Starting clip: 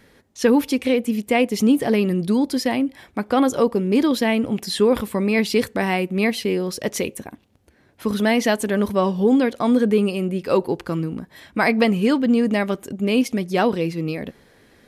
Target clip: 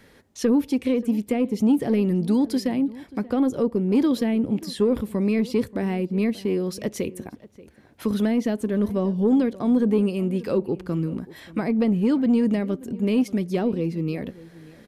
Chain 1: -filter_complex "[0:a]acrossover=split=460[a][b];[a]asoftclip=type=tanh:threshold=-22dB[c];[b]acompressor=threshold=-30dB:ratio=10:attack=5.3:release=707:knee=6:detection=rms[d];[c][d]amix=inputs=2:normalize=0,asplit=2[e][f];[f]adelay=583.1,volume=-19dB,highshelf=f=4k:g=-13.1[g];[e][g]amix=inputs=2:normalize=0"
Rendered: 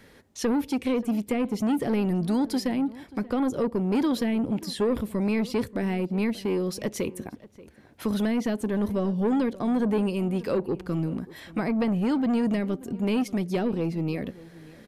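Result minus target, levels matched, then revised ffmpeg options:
soft clip: distortion +12 dB
-filter_complex "[0:a]acrossover=split=460[a][b];[a]asoftclip=type=tanh:threshold=-12dB[c];[b]acompressor=threshold=-30dB:ratio=10:attack=5.3:release=707:knee=6:detection=rms[d];[c][d]amix=inputs=2:normalize=0,asplit=2[e][f];[f]adelay=583.1,volume=-19dB,highshelf=f=4k:g=-13.1[g];[e][g]amix=inputs=2:normalize=0"

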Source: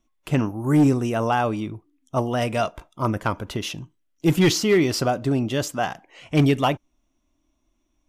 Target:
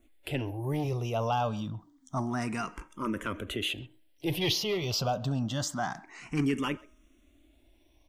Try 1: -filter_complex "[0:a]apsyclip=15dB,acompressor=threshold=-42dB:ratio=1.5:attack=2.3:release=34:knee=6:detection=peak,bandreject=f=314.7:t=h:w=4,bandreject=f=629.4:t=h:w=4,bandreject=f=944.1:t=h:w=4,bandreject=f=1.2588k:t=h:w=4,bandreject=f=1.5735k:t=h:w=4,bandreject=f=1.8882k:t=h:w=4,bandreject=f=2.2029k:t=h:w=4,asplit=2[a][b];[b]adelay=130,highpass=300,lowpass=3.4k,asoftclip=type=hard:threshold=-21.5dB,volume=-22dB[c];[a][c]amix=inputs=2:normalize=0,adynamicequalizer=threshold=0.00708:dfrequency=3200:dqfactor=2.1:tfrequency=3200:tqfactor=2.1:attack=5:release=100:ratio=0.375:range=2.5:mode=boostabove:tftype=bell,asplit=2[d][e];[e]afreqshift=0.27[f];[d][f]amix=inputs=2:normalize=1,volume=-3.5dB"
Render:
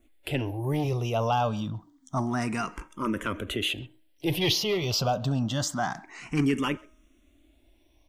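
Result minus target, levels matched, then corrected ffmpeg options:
compressor: peak gain reduction -3.5 dB
-filter_complex "[0:a]apsyclip=15dB,acompressor=threshold=-52.5dB:ratio=1.5:attack=2.3:release=34:knee=6:detection=peak,bandreject=f=314.7:t=h:w=4,bandreject=f=629.4:t=h:w=4,bandreject=f=944.1:t=h:w=4,bandreject=f=1.2588k:t=h:w=4,bandreject=f=1.5735k:t=h:w=4,bandreject=f=1.8882k:t=h:w=4,bandreject=f=2.2029k:t=h:w=4,asplit=2[a][b];[b]adelay=130,highpass=300,lowpass=3.4k,asoftclip=type=hard:threshold=-21.5dB,volume=-22dB[c];[a][c]amix=inputs=2:normalize=0,adynamicequalizer=threshold=0.00708:dfrequency=3200:dqfactor=2.1:tfrequency=3200:tqfactor=2.1:attack=5:release=100:ratio=0.375:range=2.5:mode=boostabove:tftype=bell,asplit=2[d][e];[e]afreqshift=0.27[f];[d][f]amix=inputs=2:normalize=1,volume=-3.5dB"

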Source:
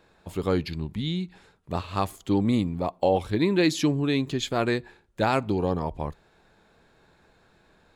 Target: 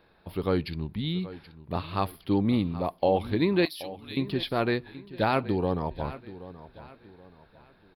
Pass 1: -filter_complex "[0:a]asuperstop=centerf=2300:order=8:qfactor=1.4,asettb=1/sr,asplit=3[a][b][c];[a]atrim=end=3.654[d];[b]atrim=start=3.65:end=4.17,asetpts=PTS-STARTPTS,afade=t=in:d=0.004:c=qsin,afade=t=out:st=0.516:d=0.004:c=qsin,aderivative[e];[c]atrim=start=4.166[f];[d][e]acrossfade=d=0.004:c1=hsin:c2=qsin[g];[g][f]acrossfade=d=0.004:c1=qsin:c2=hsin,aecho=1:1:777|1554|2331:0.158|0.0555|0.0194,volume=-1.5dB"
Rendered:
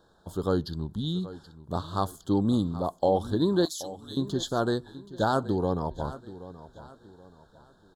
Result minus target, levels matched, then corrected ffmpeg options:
8000 Hz band +12.5 dB
-filter_complex "[0:a]asuperstop=centerf=7300:order=8:qfactor=1.4,asettb=1/sr,asplit=3[a][b][c];[a]atrim=end=3.654[d];[b]atrim=start=3.65:end=4.17,asetpts=PTS-STARTPTS,afade=t=in:d=0.004:c=qsin,afade=t=out:st=0.516:d=0.004:c=qsin,aderivative[e];[c]atrim=start=4.166[f];[d][e]acrossfade=d=0.004:c1=hsin:c2=qsin[g];[g][f]acrossfade=d=0.004:c1=qsin:c2=hsin,aecho=1:1:777|1554|2331:0.158|0.0555|0.0194,volume=-1.5dB"

